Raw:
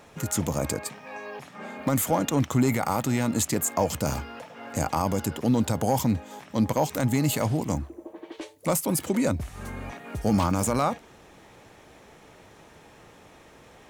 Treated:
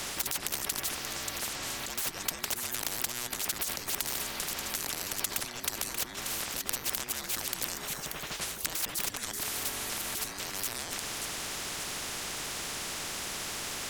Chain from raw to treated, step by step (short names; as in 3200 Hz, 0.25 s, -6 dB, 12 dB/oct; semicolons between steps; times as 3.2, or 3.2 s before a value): negative-ratio compressor -34 dBFS, ratio -1; thin delay 0.583 s, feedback 37%, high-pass 1400 Hz, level -18 dB; frequency shift -490 Hz; maximiser +19.5 dB; spectral compressor 10:1; gain -4.5 dB